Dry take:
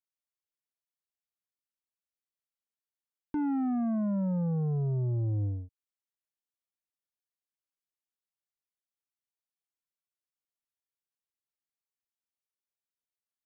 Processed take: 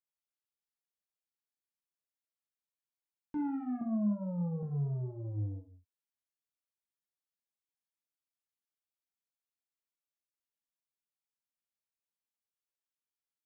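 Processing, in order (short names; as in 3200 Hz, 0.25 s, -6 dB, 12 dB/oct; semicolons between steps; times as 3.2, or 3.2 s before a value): 3.81–4.63 steep low-pass 1300 Hz 48 dB/oct; non-linear reverb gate 0.18 s falling, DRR 0.5 dB; gain -8.5 dB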